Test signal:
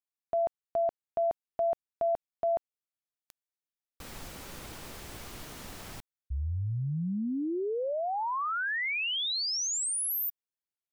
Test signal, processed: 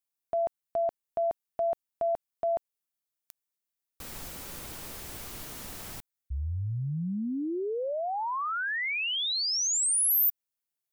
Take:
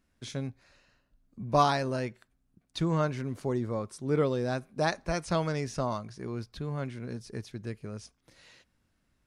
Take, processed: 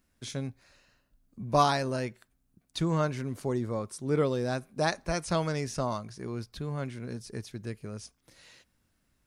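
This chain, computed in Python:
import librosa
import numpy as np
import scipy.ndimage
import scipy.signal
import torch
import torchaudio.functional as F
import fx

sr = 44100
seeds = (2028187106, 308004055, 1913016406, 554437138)

y = fx.high_shelf(x, sr, hz=8000.0, db=9.5)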